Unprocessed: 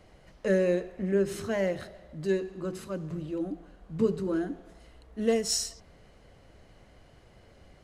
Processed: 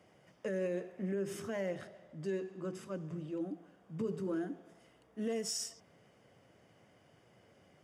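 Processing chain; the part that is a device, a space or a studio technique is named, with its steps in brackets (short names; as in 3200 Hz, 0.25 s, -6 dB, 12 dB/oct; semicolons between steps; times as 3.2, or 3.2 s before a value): PA system with an anti-feedback notch (HPF 110 Hz 24 dB/oct; Butterworth band-stop 4100 Hz, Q 6.6; limiter -22 dBFS, peak gain reduction 8.5 dB); 1.71–3.5 LPF 9900 Hz 12 dB/oct; gain -6 dB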